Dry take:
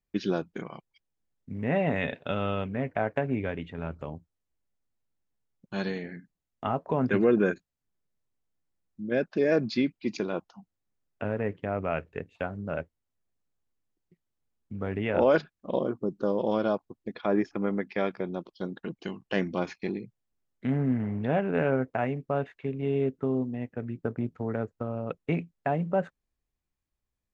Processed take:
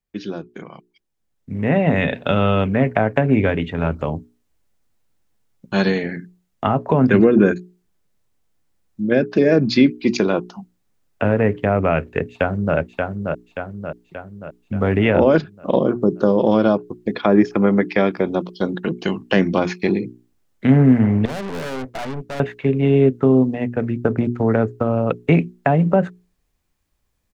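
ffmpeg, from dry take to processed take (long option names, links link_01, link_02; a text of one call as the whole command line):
ffmpeg -i in.wav -filter_complex "[0:a]asplit=2[link_01][link_02];[link_02]afade=type=in:start_time=12.3:duration=0.01,afade=type=out:start_time=12.76:duration=0.01,aecho=0:1:580|1160|1740|2320|2900|3480|4060:0.562341|0.309288|0.170108|0.0935595|0.0514577|0.0283018|0.015566[link_03];[link_01][link_03]amix=inputs=2:normalize=0,asettb=1/sr,asplit=3[link_04][link_05][link_06];[link_04]atrim=end=21.254[link_07];[link_05]atrim=start=21.25:end=22.4,asetpts=PTS-STARTPTS,afade=type=in:duration=0.004:curve=qsin,afade=type=out:start_time=1.146:duration=0.004:curve=qsin,aeval=exprs='(tanh(112*val(0)+0.65)-tanh(0.65))/112':channel_layout=same[link_08];[link_06]atrim=start=22.396[link_09];[link_07][link_08]acrossfade=duration=0.004:curve1=hsin:curve2=qsin[link_10];[link_10][link_09]acrossfade=duration=0.004:curve1=qsin:curve2=hsin,acrossover=split=320[link_11][link_12];[link_12]acompressor=threshold=-30dB:ratio=5[link_13];[link_11][link_13]amix=inputs=2:normalize=0,bandreject=frequency=60:width_type=h:width=6,bandreject=frequency=120:width_type=h:width=6,bandreject=frequency=180:width_type=h:width=6,bandreject=frequency=240:width_type=h:width=6,bandreject=frequency=300:width_type=h:width=6,bandreject=frequency=360:width_type=h:width=6,bandreject=frequency=420:width_type=h:width=6,dynaudnorm=framelen=100:gausssize=31:maxgain=14dB,volume=1.5dB" out.wav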